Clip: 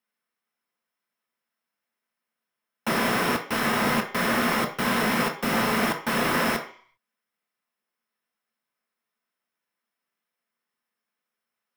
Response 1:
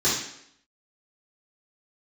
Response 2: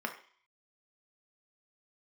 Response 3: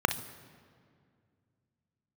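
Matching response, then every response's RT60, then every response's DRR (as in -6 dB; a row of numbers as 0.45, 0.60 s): 2; 0.70, 0.50, 2.2 s; -11.5, 3.0, 9.5 dB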